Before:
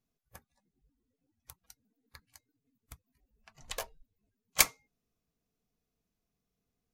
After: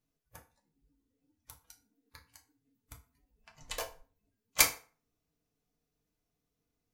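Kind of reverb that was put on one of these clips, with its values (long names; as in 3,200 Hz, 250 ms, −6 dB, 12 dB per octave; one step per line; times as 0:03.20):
feedback delay network reverb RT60 0.39 s, low-frequency decay 0.85×, high-frequency decay 0.75×, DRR 1.5 dB
level −1.5 dB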